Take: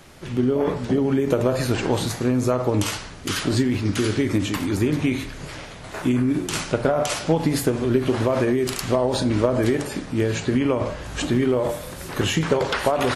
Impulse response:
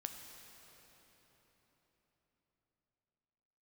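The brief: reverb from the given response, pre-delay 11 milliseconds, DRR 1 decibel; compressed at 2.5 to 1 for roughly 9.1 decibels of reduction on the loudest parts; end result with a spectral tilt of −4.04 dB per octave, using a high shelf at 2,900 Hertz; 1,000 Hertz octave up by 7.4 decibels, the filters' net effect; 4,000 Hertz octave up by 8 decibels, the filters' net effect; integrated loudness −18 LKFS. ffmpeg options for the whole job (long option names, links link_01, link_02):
-filter_complex "[0:a]equalizer=frequency=1000:width_type=o:gain=8.5,highshelf=frequency=2900:gain=6,equalizer=frequency=4000:width_type=o:gain=5,acompressor=threshold=-26dB:ratio=2.5,asplit=2[link_01][link_02];[1:a]atrim=start_sample=2205,adelay=11[link_03];[link_02][link_03]afir=irnorm=-1:irlink=0,volume=1.5dB[link_04];[link_01][link_04]amix=inputs=2:normalize=0,volume=6dB"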